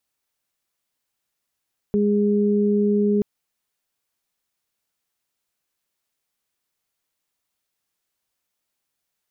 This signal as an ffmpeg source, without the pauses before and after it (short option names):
-f lavfi -i "aevalsrc='0.126*sin(2*PI*206*t)+0.1*sin(2*PI*412*t)':d=1.28:s=44100"